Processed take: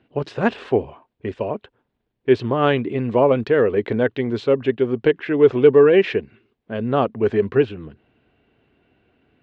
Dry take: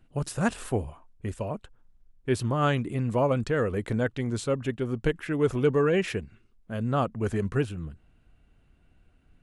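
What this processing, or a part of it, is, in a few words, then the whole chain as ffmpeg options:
kitchen radio: -af "highpass=160,equalizer=frequency=170:width_type=q:width=4:gain=-8,equalizer=frequency=410:width_type=q:width=4:gain=6,equalizer=frequency=1300:width_type=q:width=4:gain=-5,lowpass=frequency=3800:width=0.5412,lowpass=frequency=3800:width=1.3066,volume=8dB"

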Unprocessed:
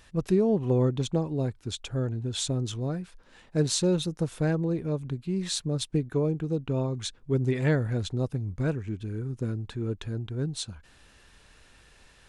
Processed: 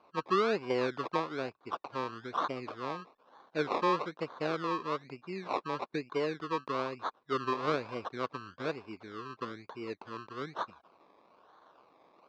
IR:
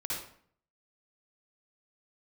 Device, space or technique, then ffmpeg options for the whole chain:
circuit-bent sampling toy: -af "acrusher=samples=24:mix=1:aa=0.000001:lfo=1:lforange=14.4:lforate=1.1,highpass=410,equalizer=frequency=1100:width_type=q:width=4:gain=8,equalizer=frequency=1900:width_type=q:width=4:gain=-8,equalizer=frequency=3100:width_type=q:width=4:gain=-7,lowpass=frequency=4100:width=0.5412,lowpass=frequency=4100:width=1.3066,volume=-1.5dB"

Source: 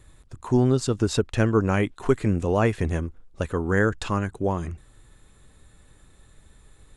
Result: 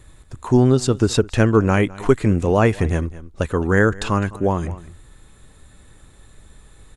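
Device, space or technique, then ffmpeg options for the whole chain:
ducked delay: -filter_complex "[0:a]asplit=3[link_01][link_02][link_03];[link_02]adelay=208,volume=-7.5dB[link_04];[link_03]apad=whole_len=316330[link_05];[link_04][link_05]sidechaincompress=threshold=-31dB:ratio=6:attack=16:release=886[link_06];[link_01][link_06]amix=inputs=2:normalize=0,volume=5.5dB"

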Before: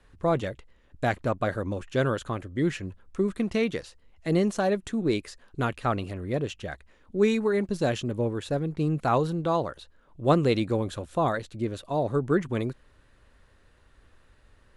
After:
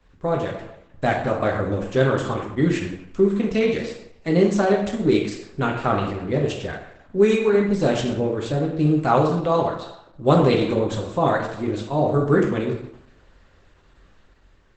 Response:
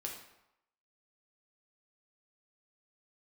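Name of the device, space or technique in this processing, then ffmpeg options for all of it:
speakerphone in a meeting room: -filter_complex "[1:a]atrim=start_sample=2205[link_01];[0:a][link_01]afir=irnorm=-1:irlink=0,dynaudnorm=framelen=190:gausssize=7:maxgain=4dB,volume=3.5dB" -ar 48000 -c:a libopus -b:a 12k

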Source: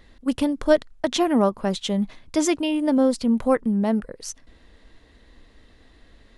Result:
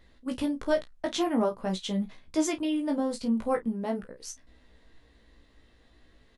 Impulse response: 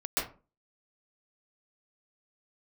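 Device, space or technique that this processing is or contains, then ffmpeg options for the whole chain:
double-tracked vocal: -filter_complex "[0:a]asplit=2[link_01][link_02];[link_02]adelay=32,volume=-12dB[link_03];[link_01][link_03]amix=inputs=2:normalize=0,flanger=delay=15.5:depth=2.6:speed=0.46,volume=-4dB"

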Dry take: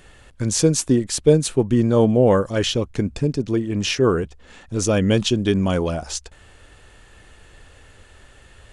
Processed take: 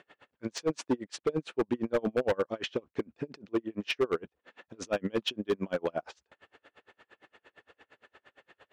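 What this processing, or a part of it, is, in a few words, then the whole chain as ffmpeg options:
helicopter radio: -af "highpass=320,lowpass=2700,aeval=exprs='val(0)*pow(10,-36*(0.5-0.5*cos(2*PI*8.7*n/s))/20)':channel_layout=same,asoftclip=type=hard:threshold=-21.5dB"

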